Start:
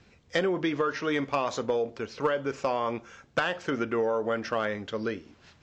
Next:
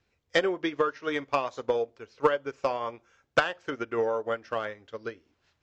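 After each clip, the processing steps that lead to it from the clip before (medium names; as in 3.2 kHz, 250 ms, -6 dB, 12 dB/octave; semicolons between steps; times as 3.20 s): peaking EQ 190 Hz -8.5 dB 0.79 oct; upward expansion 2.5:1, over -36 dBFS; trim +6 dB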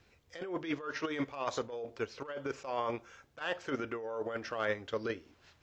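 compressor with a negative ratio -37 dBFS, ratio -1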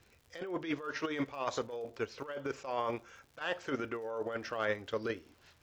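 crackle 100 per s -51 dBFS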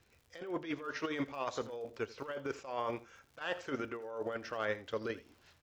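delay 83 ms -17.5 dB; random flutter of the level, depth 50%; trim +1 dB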